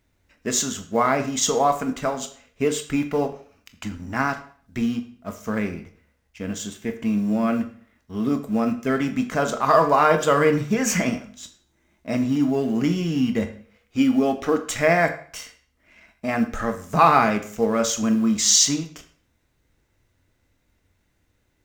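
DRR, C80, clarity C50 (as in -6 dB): 7.0 dB, 14.5 dB, 12.0 dB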